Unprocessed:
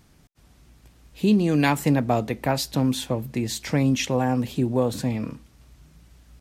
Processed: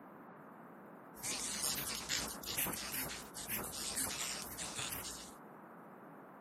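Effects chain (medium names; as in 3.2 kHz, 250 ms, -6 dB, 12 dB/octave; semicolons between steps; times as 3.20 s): frequency weighting ITU-R 468; spectral gate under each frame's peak -25 dB weak; band noise 180–1400 Hz -57 dBFS; tone controls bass +12 dB, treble +3 dB; band-stop 3.2 kHz, Q 24; decay stretcher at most 53 dB/s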